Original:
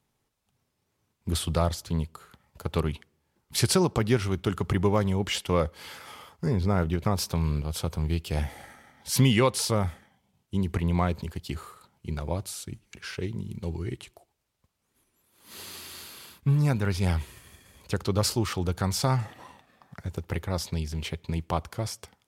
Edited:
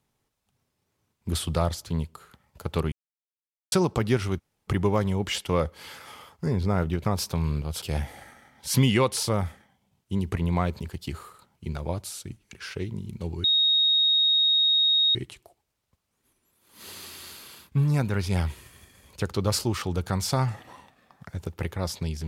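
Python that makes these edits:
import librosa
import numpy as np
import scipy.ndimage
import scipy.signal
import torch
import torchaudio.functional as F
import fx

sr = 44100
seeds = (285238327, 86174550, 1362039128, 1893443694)

y = fx.edit(x, sr, fx.silence(start_s=2.92, length_s=0.8),
    fx.room_tone_fill(start_s=4.39, length_s=0.29, crossfade_s=0.02),
    fx.cut(start_s=7.82, length_s=0.42),
    fx.insert_tone(at_s=13.86, length_s=1.71, hz=3750.0, db=-18.0), tone=tone)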